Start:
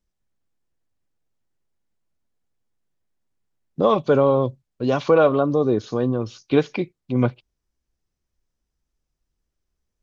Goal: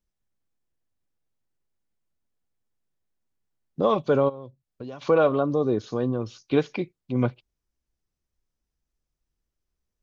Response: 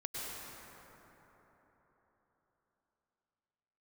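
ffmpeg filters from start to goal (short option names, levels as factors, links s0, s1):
-filter_complex "[0:a]asplit=3[s0][s1][s2];[s0]afade=t=out:st=4.28:d=0.02[s3];[s1]acompressor=threshold=0.0282:ratio=8,afade=t=in:st=4.28:d=0.02,afade=t=out:st=5.01:d=0.02[s4];[s2]afade=t=in:st=5.01:d=0.02[s5];[s3][s4][s5]amix=inputs=3:normalize=0,volume=0.631"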